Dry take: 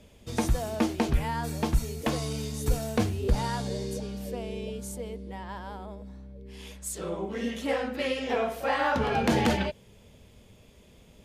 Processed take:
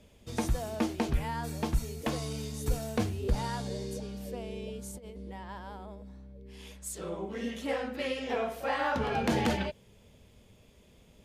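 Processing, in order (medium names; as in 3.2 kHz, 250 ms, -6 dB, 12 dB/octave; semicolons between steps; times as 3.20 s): 4.91–5.35 s: compressor with a negative ratio -39 dBFS, ratio -0.5; trim -4 dB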